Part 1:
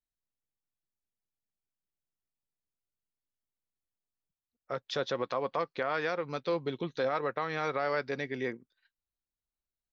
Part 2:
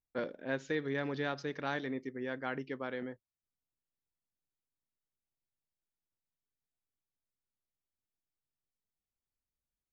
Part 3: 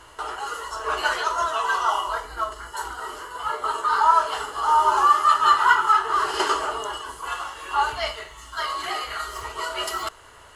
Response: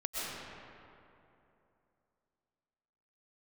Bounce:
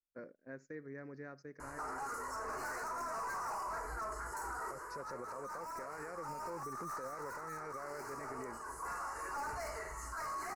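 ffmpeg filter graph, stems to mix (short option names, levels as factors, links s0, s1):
-filter_complex "[0:a]acontrast=61,volume=0.188,asplit=2[s0][s1];[1:a]agate=range=0.178:threshold=0.00708:ratio=16:detection=peak,volume=0.266[s2];[2:a]aeval=exprs='(tanh(39.8*val(0)+0.05)-tanh(0.05))/39.8':c=same,adelay=1600,volume=1[s3];[s1]apad=whole_len=535904[s4];[s3][s4]sidechaincompress=threshold=0.00501:ratio=6:attack=23:release=938[s5];[s0][s2]amix=inputs=2:normalize=0,equalizer=f=850:t=o:w=0.51:g=-8.5,alimiter=level_in=3.35:limit=0.0631:level=0:latency=1,volume=0.299,volume=1[s6];[s5][s6]amix=inputs=2:normalize=0,asuperstop=centerf=3300:order=4:qfactor=0.91,alimiter=level_in=3.76:limit=0.0631:level=0:latency=1:release=64,volume=0.266"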